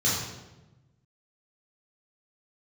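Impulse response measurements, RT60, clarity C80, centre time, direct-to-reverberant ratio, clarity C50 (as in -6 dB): 1.1 s, 3.5 dB, 68 ms, -7.5 dB, 0.5 dB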